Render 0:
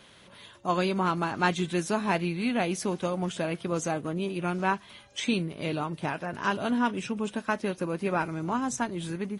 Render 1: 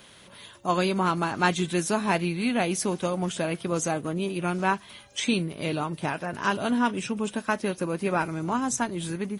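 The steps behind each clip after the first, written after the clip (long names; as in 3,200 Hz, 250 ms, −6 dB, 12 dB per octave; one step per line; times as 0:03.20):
high-shelf EQ 9,000 Hz +11 dB
level +2 dB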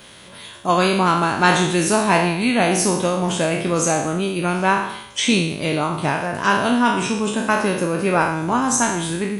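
peak hold with a decay on every bin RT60 0.76 s
level +6 dB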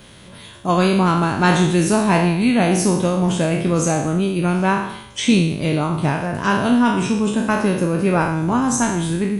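low-shelf EQ 280 Hz +11.5 dB
level −3 dB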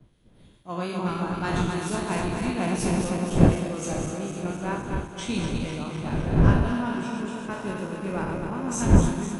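feedback delay that plays each chunk backwards 127 ms, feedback 85%, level −4.5 dB
wind on the microphone 230 Hz −17 dBFS
multiband upward and downward expander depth 70%
level −14 dB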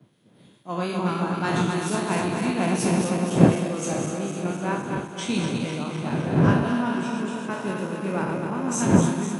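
high-pass filter 130 Hz 24 dB per octave
level +3 dB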